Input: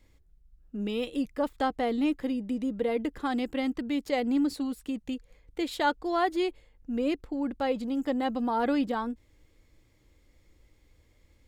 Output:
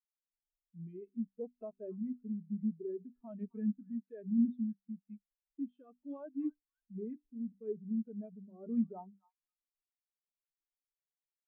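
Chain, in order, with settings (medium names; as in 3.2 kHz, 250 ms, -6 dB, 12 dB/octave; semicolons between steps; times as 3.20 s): low-pass 8.3 kHz; peaking EQ 78 Hz -6.5 dB 2.2 oct; hum notches 60/120/180/240/300/360/420/480 Hz; peak limiter -23 dBFS, peak gain reduction 9.5 dB; rotary cabinet horn 1.1 Hz; pitch shift -3.5 st; on a send: repeats whose band climbs or falls 263 ms, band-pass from 1.2 kHz, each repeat 0.7 oct, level -7 dB; on the sum: spectral contrast expander 2.5:1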